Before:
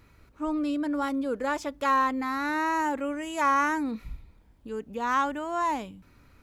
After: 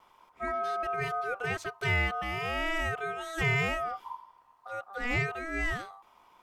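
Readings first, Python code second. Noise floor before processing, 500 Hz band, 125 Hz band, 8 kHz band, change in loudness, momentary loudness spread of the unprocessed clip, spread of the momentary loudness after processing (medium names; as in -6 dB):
-59 dBFS, -2.5 dB, no reading, -4.5 dB, -3.5 dB, 13 LU, 12 LU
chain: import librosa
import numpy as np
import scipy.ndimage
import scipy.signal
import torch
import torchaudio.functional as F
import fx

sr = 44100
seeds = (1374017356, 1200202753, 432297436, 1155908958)

y = x * np.sin(2.0 * np.pi * 980.0 * np.arange(len(x)) / sr)
y = fx.vibrato(y, sr, rate_hz=0.46, depth_cents=8.4)
y = y * 10.0 ** (-1.0 / 20.0)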